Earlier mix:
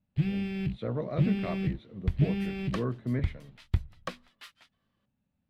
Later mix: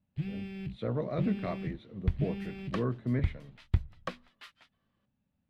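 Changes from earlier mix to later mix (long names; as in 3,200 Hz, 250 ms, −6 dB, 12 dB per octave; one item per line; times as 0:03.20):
first sound −7.5 dB
second sound: add high-shelf EQ 5,500 Hz −10 dB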